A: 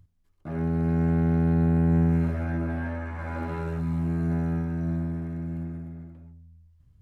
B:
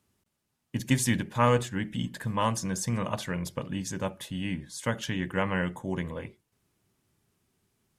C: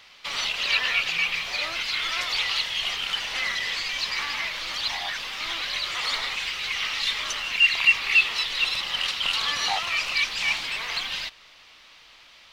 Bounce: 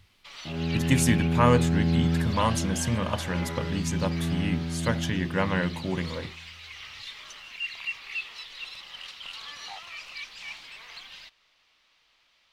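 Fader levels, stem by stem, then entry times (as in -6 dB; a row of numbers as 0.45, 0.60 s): -2.5, +2.0, -15.0 dB; 0.00, 0.00, 0.00 s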